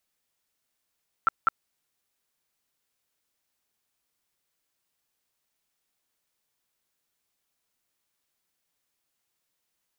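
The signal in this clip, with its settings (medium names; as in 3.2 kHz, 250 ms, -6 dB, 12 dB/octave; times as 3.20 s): tone bursts 1.34 kHz, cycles 21, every 0.20 s, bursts 2, -16 dBFS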